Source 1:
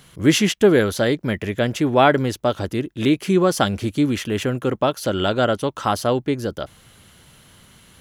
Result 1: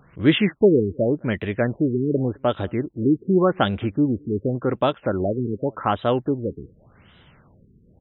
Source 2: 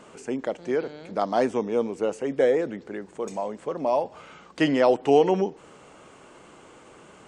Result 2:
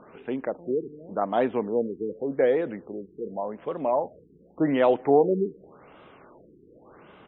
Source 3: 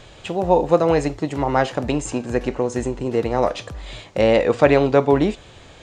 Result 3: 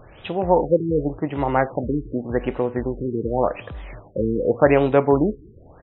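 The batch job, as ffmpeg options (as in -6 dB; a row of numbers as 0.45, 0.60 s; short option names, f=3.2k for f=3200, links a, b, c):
-filter_complex "[0:a]asplit=2[a][b];[b]adelay=209.9,volume=-30dB,highshelf=f=4k:g=-4.72[c];[a][c]amix=inputs=2:normalize=0,afftfilt=real='re*lt(b*sr/1024,450*pow(4000/450,0.5+0.5*sin(2*PI*0.87*pts/sr)))':imag='im*lt(b*sr/1024,450*pow(4000/450,0.5+0.5*sin(2*PI*0.87*pts/sr)))':win_size=1024:overlap=0.75,volume=-1dB"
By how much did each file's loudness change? -2.0, -1.0, -2.0 LU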